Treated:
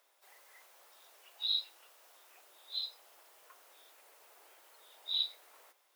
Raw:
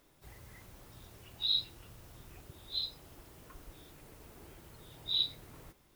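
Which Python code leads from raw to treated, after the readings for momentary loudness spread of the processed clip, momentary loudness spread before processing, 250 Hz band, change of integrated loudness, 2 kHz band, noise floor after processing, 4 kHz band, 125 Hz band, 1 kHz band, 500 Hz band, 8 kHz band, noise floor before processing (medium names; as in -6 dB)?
13 LU, 19 LU, under -20 dB, -2.0 dB, -2.0 dB, -72 dBFS, -2.0 dB, under -40 dB, -2.0 dB, -7.5 dB, -2.0 dB, -66 dBFS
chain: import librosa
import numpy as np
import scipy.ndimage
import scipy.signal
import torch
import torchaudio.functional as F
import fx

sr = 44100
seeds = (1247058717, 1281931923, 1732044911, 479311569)

y = scipy.signal.sosfilt(scipy.signal.butter(4, 560.0, 'highpass', fs=sr, output='sos'), x)
y = F.gain(torch.from_numpy(y), -2.0).numpy()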